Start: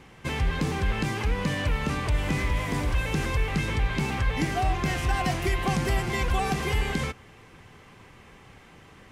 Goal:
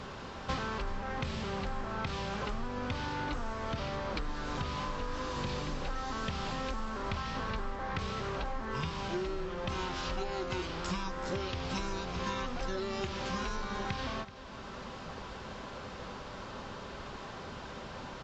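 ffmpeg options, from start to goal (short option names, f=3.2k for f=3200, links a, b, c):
-af "bass=f=250:g=-7,treble=f=4k:g=6,acompressor=threshold=-42dB:ratio=8,aecho=1:1:190:0.168,asetrate=22050,aresample=44100,volume=8.5dB"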